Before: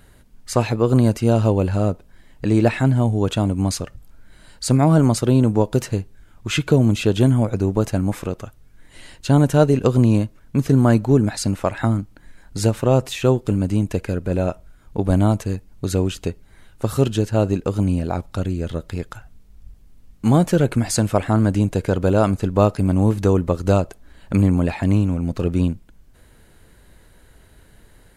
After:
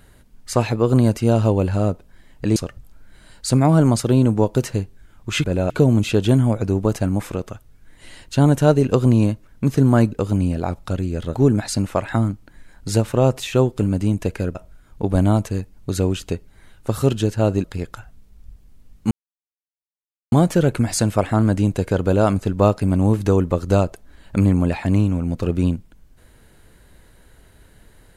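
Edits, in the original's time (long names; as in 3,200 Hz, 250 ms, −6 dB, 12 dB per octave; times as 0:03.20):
0:02.56–0:03.74: remove
0:14.24–0:14.50: move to 0:06.62
0:17.59–0:18.82: move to 0:11.04
0:20.29: splice in silence 1.21 s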